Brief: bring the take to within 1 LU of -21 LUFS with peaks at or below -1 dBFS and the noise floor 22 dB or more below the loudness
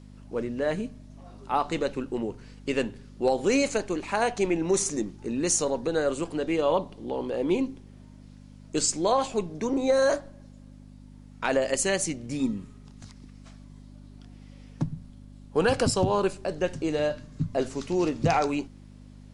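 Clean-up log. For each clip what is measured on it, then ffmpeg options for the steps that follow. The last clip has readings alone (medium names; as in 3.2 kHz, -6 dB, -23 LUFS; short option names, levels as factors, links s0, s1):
hum 50 Hz; highest harmonic 250 Hz; hum level -45 dBFS; loudness -27.5 LUFS; peak level -11.5 dBFS; loudness target -21.0 LUFS
-> -af "bandreject=f=50:t=h:w=4,bandreject=f=100:t=h:w=4,bandreject=f=150:t=h:w=4,bandreject=f=200:t=h:w=4,bandreject=f=250:t=h:w=4"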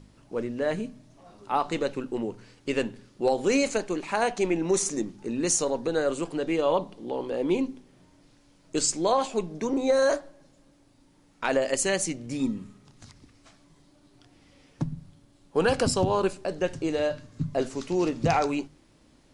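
hum not found; loudness -27.5 LUFS; peak level -11.5 dBFS; loudness target -21.0 LUFS
-> -af "volume=2.11"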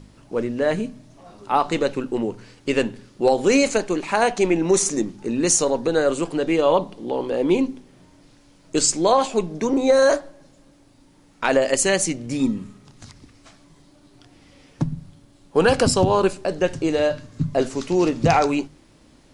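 loudness -21.0 LUFS; peak level -5.0 dBFS; noise floor -54 dBFS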